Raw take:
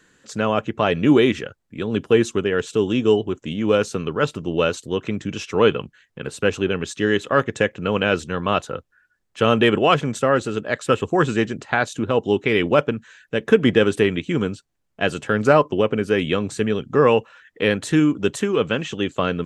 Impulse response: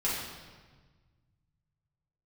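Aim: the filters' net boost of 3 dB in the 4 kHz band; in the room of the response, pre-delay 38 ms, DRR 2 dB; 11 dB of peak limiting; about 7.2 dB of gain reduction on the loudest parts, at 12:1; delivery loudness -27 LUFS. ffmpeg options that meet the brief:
-filter_complex "[0:a]equalizer=f=4000:t=o:g=4.5,acompressor=threshold=0.158:ratio=12,alimiter=limit=0.211:level=0:latency=1,asplit=2[s0][s1];[1:a]atrim=start_sample=2205,adelay=38[s2];[s1][s2]afir=irnorm=-1:irlink=0,volume=0.316[s3];[s0][s3]amix=inputs=2:normalize=0,volume=0.75"

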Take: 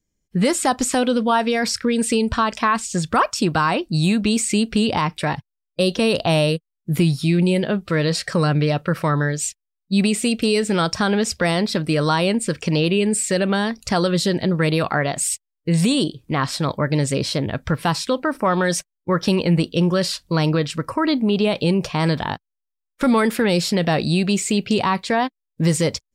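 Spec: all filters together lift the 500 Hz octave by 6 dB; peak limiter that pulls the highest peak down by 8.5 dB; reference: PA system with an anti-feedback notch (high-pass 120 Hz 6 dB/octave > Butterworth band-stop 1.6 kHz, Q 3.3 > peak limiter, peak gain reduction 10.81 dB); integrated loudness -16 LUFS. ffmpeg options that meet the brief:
-af "equalizer=f=500:t=o:g=7.5,alimiter=limit=0.266:level=0:latency=1,highpass=f=120:p=1,asuperstop=centerf=1600:order=8:qfactor=3.3,volume=4.22,alimiter=limit=0.422:level=0:latency=1"

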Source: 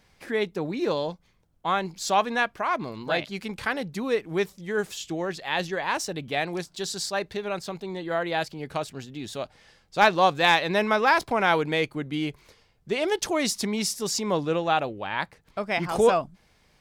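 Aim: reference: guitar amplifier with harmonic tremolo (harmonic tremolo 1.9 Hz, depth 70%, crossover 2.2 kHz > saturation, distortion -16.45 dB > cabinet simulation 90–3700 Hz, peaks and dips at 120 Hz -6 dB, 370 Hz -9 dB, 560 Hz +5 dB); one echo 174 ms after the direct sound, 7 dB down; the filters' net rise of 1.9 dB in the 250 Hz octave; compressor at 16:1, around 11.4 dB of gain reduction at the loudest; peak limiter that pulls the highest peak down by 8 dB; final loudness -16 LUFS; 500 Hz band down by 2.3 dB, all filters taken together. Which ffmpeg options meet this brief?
-filter_complex "[0:a]equalizer=f=250:t=o:g=6.5,equalizer=f=500:t=o:g=-5,acompressor=threshold=0.0501:ratio=16,alimiter=limit=0.0668:level=0:latency=1,aecho=1:1:174:0.447,acrossover=split=2200[s0][s1];[s0]aeval=exprs='val(0)*(1-0.7/2+0.7/2*cos(2*PI*1.9*n/s))':c=same[s2];[s1]aeval=exprs='val(0)*(1-0.7/2-0.7/2*cos(2*PI*1.9*n/s))':c=same[s3];[s2][s3]amix=inputs=2:normalize=0,asoftclip=threshold=0.0376,highpass=90,equalizer=f=120:t=q:w=4:g=-6,equalizer=f=370:t=q:w=4:g=-9,equalizer=f=560:t=q:w=4:g=5,lowpass=f=3700:w=0.5412,lowpass=f=3700:w=1.3066,volume=15"

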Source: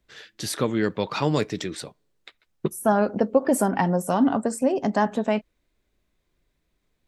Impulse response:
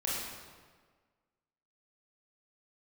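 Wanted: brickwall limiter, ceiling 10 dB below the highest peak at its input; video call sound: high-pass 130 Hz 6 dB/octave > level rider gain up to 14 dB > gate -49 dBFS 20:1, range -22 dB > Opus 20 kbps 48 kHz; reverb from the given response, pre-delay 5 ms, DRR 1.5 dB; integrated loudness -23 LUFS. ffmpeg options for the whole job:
-filter_complex "[0:a]alimiter=limit=0.141:level=0:latency=1,asplit=2[s0][s1];[1:a]atrim=start_sample=2205,adelay=5[s2];[s1][s2]afir=irnorm=-1:irlink=0,volume=0.422[s3];[s0][s3]amix=inputs=2:normalize=0,highpass=f=130:p=1,dynaudnorm=m=5.01,agate=range=0.0794:threshold=0.00355:ratio=20,volume=1.58" -ar 48000 -c:a libopus -b:a 20k

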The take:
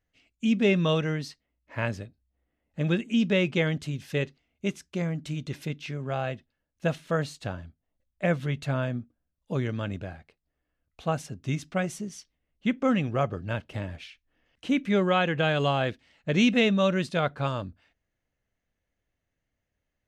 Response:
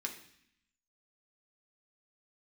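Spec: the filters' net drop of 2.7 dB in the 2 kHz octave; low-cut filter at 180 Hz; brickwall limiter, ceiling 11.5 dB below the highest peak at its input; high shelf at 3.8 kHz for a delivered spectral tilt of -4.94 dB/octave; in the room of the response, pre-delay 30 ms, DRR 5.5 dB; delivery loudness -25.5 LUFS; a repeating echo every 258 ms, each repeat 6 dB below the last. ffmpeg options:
-filter_complex "[0:a]highpass=180,equalizer=f=2000:t=o:g=-6.5,highshelf=f=3800:g=9,alimiter=limit=0.0794:level=0:latency=1,aecho=1:1:258|516|774|1032|1290|1548:0.501|0.251|0.125|0.0626|0.0313|0.0157,asplit=2[s0][s1];[1:a]atrim=start_sample=2205,adelay=30[s2];[s1][s2]afir=irnorm=-1:irlink=0,volume=0.531[s3];[s0][s3]amix=inputs=2:normalize=0,volume=2.24"

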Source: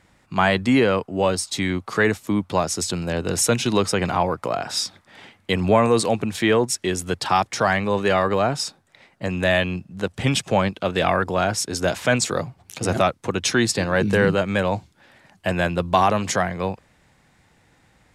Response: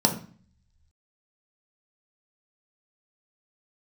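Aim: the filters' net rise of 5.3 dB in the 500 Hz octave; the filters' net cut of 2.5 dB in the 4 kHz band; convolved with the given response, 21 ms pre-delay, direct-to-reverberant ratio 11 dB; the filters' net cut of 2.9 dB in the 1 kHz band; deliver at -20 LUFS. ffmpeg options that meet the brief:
-filter_complex "[0:a]equalizer=f=500:t=o:g=8.5,equalizer=f=1000:t=o:g=-8,equalizer=f=4000:t=o:g=-3,asplit=2[s0][s1];[1:a]atrim=start_sample=2205,adelay=21[s2];[s1][s2]afir=irnorm=-1:irlink=0,volume=0.0596[s3];[s0][s3]amix=inputs=2:normalize=0,volume=0.841"

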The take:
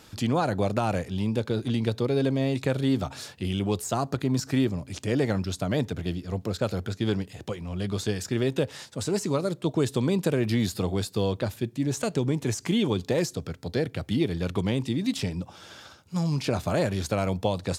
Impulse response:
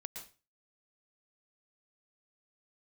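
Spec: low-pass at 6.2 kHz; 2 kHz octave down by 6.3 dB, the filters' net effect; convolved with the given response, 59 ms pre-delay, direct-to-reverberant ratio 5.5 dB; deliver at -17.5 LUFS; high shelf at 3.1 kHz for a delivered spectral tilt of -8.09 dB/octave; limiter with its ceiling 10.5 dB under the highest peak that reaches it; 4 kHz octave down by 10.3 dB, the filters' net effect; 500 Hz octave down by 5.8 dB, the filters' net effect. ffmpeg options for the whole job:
-filter_complex "[0:a]lowpass=6200,equalizer=f=500:t=o:g=-7,equalizer=f=2000:t=o:g=-4,highshelf=f=3100:g=-6,equalizer=f=4000:t=o:g=-6.5,alimiter=limit=0.0631:level=0:latency=1,asplit=2[s0][s1];[1:a]atrim=start_sample=2205,adelay=59[s2];[s1][s2]afir=irnorm=-1:irlink=0,volume=0.75[s3];[s0][s3]amix=inputs=2:normalize=0,volume=5.96"

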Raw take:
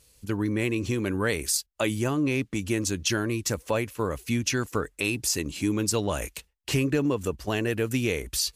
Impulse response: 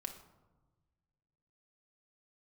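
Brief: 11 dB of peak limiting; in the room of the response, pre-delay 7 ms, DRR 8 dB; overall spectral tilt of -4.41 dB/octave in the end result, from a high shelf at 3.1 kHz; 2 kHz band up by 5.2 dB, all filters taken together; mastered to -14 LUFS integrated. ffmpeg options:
-filter_complex "[0:a]equalizer=f=2000:t=o:g=8.5,highshelf=f=3100:g=-4,alimiter=limit=0.1:level=0:latency=1,asplit=2[s0][s1];[1:a]atrim=start_sample=2205,adelay=7[s2];[s1][s2]afir=irnorm=-1:irlink=0,volume=0.531[s3];[s0][s3]amix=inputs=2:normalize=0,volume=6.31"

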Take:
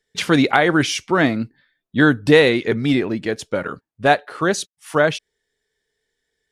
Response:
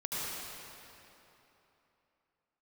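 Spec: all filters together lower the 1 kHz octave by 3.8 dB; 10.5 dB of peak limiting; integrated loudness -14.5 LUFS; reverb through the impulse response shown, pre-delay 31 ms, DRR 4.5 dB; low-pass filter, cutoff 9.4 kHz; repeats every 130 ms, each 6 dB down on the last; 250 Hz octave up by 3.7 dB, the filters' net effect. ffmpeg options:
-filter_complex "[0:a]lowpass=9400,equalizer=f=250:t=o:g=5,equalizer=f=1000:t=o:g=-6.5,alimiter=limit=0.299:level=0:latency=1,aecho=1:1:130|260|390|520|650|780:0.501|0.251|0.125|0.0626|0.0313|0.0157,asplit=2[s0][s1];[1:a]atrim=start_sample=2205,adelay=31[s2];[s1][s2]afir=irnorm=-1:irlink=0,volume=0.316[s3];[s0][s3]amix=inputs=2:normalize=0,volume=1.78"

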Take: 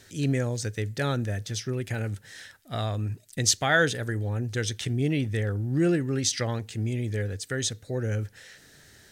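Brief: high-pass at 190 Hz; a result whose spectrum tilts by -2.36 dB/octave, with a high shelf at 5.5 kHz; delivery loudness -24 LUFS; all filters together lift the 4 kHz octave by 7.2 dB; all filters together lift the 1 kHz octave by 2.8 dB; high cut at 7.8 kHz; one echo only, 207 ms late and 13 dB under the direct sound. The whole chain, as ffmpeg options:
-af "highpass=190,lowpass=7800,equalizer=f=1000:t=o:g=3.5,equalizer=f=4000:t=o:g=5.5,highshelf=f=5500:g=8,aecho=1:1:207:0.224,volume=1.26"

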